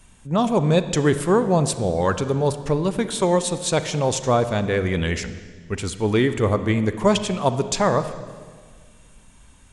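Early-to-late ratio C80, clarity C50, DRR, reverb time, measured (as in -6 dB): 13.0 dB, 12.0 dB, 11.0 dB, 1.8 s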